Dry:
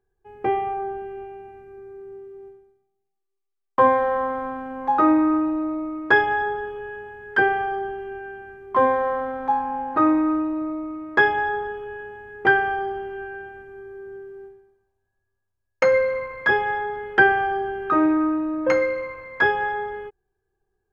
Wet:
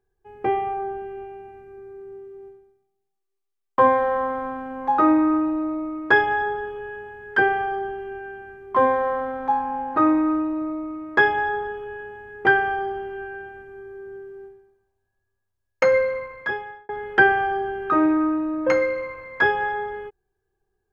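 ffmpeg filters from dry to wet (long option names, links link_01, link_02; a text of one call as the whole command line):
ffmpeg -i in.wav -filter_complex "[0:a]asplit=2[link_01][link_02];[link_01]atrim=end=16.89,asetpts=PTS-STARTPTS,afade=type=out:start_time=15.98:duration=0.91[link_03];[link_02]atrim=start=16.89,asetpts=PTS-STARTPTS,afade=type=in:duration=0.004:curve=hsin[link_04];[link_03][link_04]concat=n=2:v=0:a=1" out.wav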